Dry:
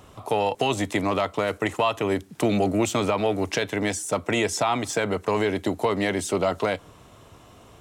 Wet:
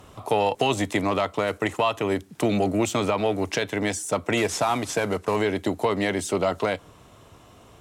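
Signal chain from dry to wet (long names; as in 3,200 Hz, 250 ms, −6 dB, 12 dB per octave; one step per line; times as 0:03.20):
0:04.37–0:05.36: variable-slope delta modulation 64 kbit/s
harmonic generator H 7 −39 dB, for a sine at −12 dBFS
speech leveller 2 s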